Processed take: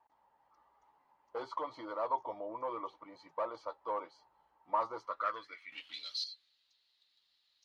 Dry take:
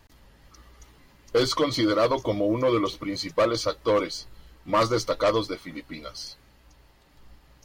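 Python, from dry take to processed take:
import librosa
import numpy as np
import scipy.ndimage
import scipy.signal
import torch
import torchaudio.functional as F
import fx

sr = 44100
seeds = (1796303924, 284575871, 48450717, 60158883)

y = fx.leveller(x, sr, passes=3, at=(5.72, 6.24))
y = fx.filter_sweep_bandpass(y, sr, from_hz=880.0, to_hz=3900.0, start_s=4.96, end_s=6.03, q=6.8)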